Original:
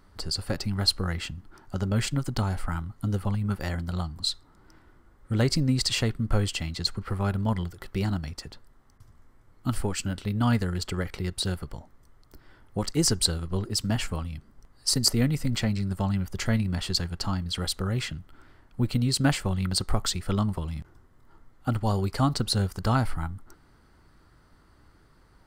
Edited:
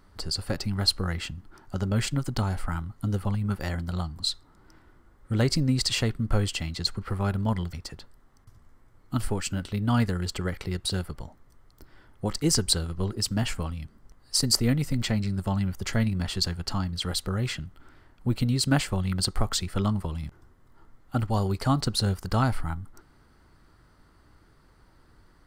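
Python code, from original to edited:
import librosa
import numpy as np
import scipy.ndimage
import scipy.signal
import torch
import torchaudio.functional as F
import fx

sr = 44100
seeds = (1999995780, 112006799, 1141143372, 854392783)

y = fx.edit(x, sr, fx.cut(start_s=7.73, length_s=0.53), tone=tone)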